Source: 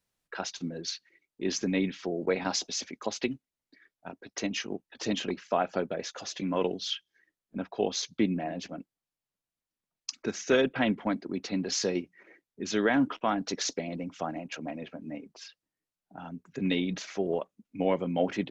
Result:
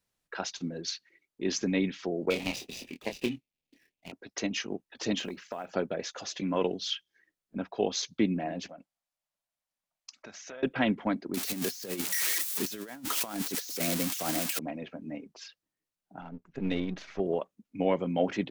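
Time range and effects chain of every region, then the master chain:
2.30–4.12 s: median filter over 41 samples + resonant high shelf 1.9 kHz +9 dB, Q 3 + doubling 25 ms -7 dB
5.20–5.72 s: short-mantissa float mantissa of 4-bit + compression 12:1, threshold -32 dBFS
8.69–10.63 s: low-pass that closes with the level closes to 2.2 kHz, closed at -21.5 dBFS + resonant low shelf 500 Hz -6 dB, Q 3 + compression 5:1, threshold -43 dBFS
11.34–14.59 s: zero-crossing glitches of -20.5 dBFS + compressor with a negative ratio -32 dBFS, ratio -0.5
16.21–17.20 s: partial rectifier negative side -7 dB + low-pass 6.3 kHz + treble shelf 4.2 kHz -9.5 dB
whole clip: none

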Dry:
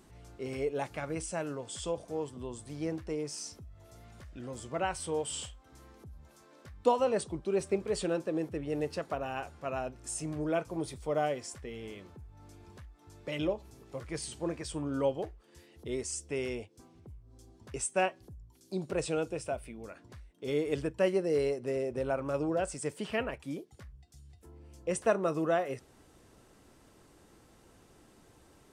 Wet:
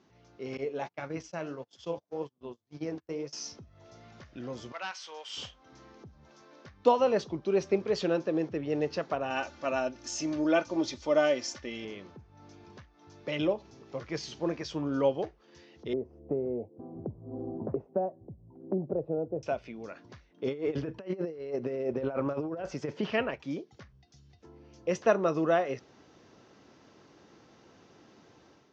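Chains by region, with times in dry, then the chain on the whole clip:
0.57–3.33 s: flange 1.8 Hz, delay 5.5 ms, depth 8.1 ms, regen +62% + gate -45 dBFS, range -33 dB
4.72–5.37 s: high-pass 1.3 kHz + hard clipper -34 dBFS
9.30–11.85 s: treble shelf 3.6 kHz +9.5 dB + comb 3.4 ms, depth 61%
15.93–19.43 s: Chebyshev low-pass 680 Hz, order 3 + three bands compressed up and down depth 100%
20.31–23.10 s: treble shelf 3.4 kHz -11.5 dB + compressor with a negative ratio -35 dBFS, ratio -0.5
whole clip: high-pass 130 Hz 12 dB/octave; level rider gain up to 8 dB; steep low-pass 6.4 kHz 72 dB/octave; trim -4.5 dB

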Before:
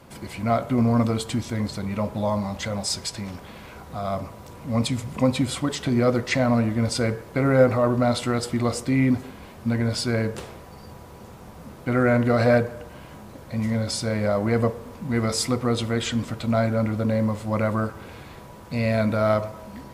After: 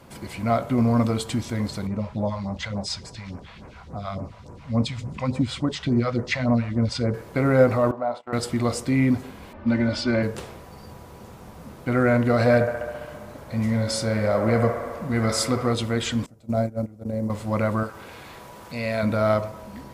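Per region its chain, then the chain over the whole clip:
1.87–7.14 s: low-pass 4.7 kHz + phase shifter stages 2, 3.5 Hz, lowest notch 260–3500 Hz
7.91–8.33 s: band-pass filter 790 Hz, Q 1.9 + gate -40 dBFS, range -22 dB
9.53–10.23 s: low-pass 4.2 kHz + level-controlled noise filter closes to 1.9 kHz, open at -20.5 dBFS + comb 3.4 ms, depth 93%
12.54–15.74 s: doubling 27 ms -13 dB + feedback echo behind a band-pass 67 ms, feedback 77%, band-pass 940 Hz, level -5 dB
16.26–17.30 s: hum notches 50/100/150 Hz + gate -22 dBFS, range -19 dB + high-order bell 2 kHz -10.5 dB 2.5 oct
17.83–19.03 s: bass shelf 320 Hz -9.5 dB + upward compressor, threshold -35 dBFS
whole clip: none

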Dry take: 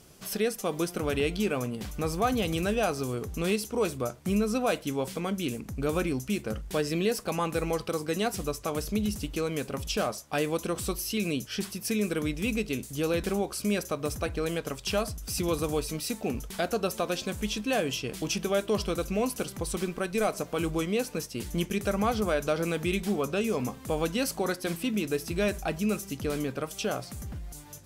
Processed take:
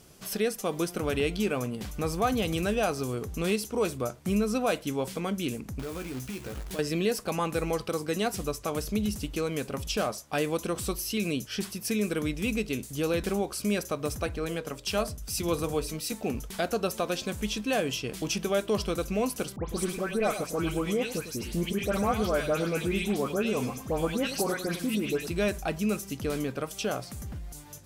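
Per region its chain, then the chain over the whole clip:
5.79–6.79 s: compression, threshold -34 dBFS + companded quantiser 4-bit + doubling 16 ms -6.5 dB
14.37–16.12 s: hum notches 60/120/180/240/300/360/420/480/540/600 Hz + three bands expanded up and down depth 40%
19.56–25.27 s: phase dispersion highs, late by 132 ms, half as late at 2.4 kHz + delay 103 ms -11 dB
whole clip: none

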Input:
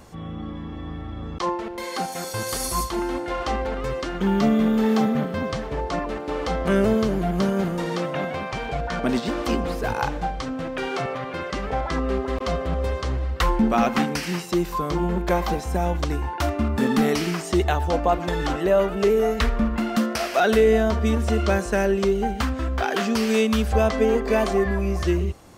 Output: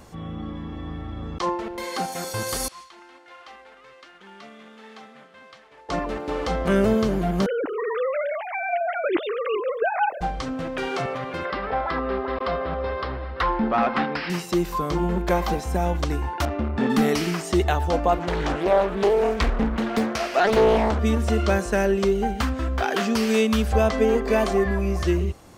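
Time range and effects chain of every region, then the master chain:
2.68–5.89 s: CVSD coder 64 kbps + low-pass 2.5 kHz + differentiator
7.46–10.21 s: formants replaced by sine waves + word length cut 12-bit, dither none
11.45–14.30 s: upward compressor, threshold -24 dBFS + rippled Chebyshev low-pass 5.3 kHz, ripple 3 dB + overdrive pedal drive 12 dB, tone 1.5 kHz, clips at -10.5 dBFS
16.45–16.90 s: low-pass 3.9 kHz + transformer saturation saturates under 320 Hz
18.19–20.99 s: treble shelf 8.7 kHz -9.5 dB + loudspeaker Doppler distortion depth 0.92 ms
whole clip: none

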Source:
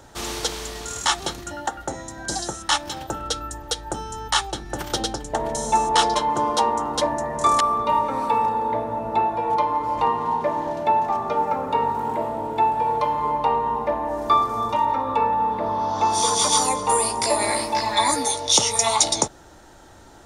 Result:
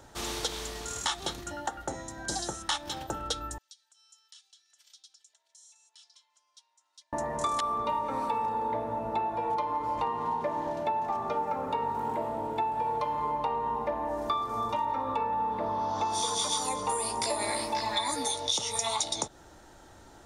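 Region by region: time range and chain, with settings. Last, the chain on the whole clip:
3.58–7.13 s: comb 3 ms, depth 90% + compression 10:1, threshold -29 dBFS + ladder band-pass 5.7 kHz, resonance 20%
whole clip: dynamic bell 3.6 kHz, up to +6 dB, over -41 dBFS, Q 5.6; compression, threshold -21 dBFS; trim -5.5 dB

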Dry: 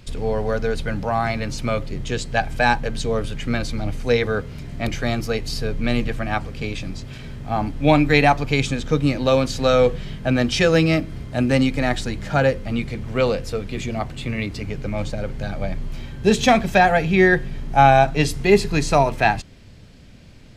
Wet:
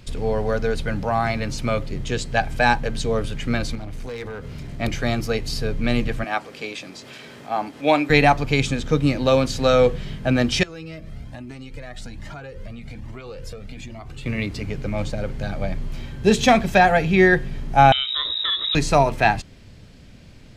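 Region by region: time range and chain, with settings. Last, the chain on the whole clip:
3.75–4.80 s: compression 10:1, threshold -26 dBFS + hard clipper -27 dBFS
6.24–8.10 s: high-pass 360 Hz + upward compressor, threshold -34 dBFS
10.63–14.26 s: compression 10:1, threshold -27 dBFS + Shepard-style flanger rising 1.2 Hz
17.92–18.75 s: compression, threshold -20 dBFS + frequency inversion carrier 3.8 kHz
whole clip: none

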